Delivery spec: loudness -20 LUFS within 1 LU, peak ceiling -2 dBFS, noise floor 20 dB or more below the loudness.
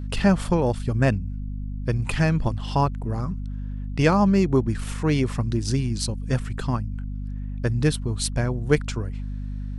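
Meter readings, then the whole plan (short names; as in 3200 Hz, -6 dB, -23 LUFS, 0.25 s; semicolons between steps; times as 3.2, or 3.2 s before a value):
hum 50 Hz; harmonics up to 250 Hz; hum level -28 dBFS; loudness -24.5 LUFS; peak -4.5 dBFS; loudness target -20.0 LUFS
-> notches 50/100/150/200/250 Hz; gain +4.5 dB; limiter -2 dBFS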